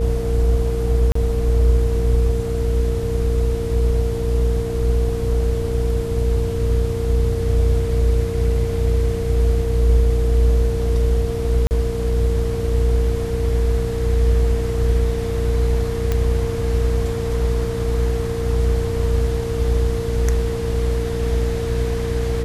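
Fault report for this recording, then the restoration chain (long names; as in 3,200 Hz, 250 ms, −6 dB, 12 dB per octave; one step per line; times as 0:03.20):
mains hum 60 Hz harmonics 8 −23 dBFS
whistle 460 Hz −24 dBFS
0:01.12–0:01.15: drop-out 34 ms
0:11.67–0:11.71: drop-out 39 ms
0:16.12: click −8 dBFS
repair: click removal
notch filter 460 Hz, Q 30
hum removal 60 Hz, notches 8
repair the gap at 0:01.12, 34 ms
repair the gap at 0:11.67, 39 ms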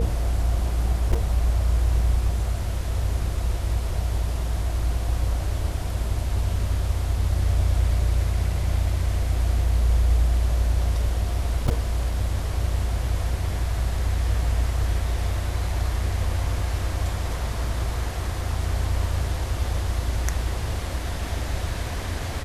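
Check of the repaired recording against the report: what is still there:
none of them is left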